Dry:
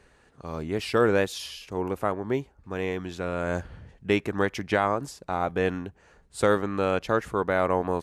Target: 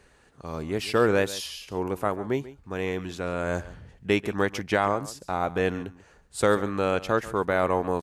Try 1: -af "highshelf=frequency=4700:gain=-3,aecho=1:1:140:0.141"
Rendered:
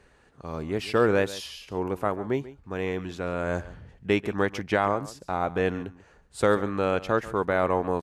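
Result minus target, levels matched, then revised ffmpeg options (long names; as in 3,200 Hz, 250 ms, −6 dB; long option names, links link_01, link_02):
8,000 Hz band −5.0 dB
-af "highshelf=frequency=4700:gain=4.5,aecho=1:1:140:0.141"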